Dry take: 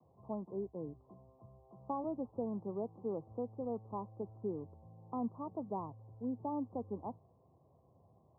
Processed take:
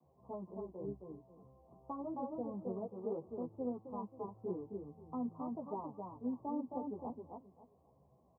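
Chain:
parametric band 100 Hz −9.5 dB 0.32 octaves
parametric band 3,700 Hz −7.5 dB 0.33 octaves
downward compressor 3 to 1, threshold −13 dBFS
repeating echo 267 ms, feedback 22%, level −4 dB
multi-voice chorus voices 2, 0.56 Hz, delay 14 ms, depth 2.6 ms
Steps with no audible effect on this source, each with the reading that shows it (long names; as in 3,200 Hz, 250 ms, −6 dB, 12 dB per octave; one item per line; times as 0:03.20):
parametric band 3,700 Hz: nothing at its input above 1,200 Hz
downward compressor, threshold −13 dBFS: peak of its input −27.0 dBFS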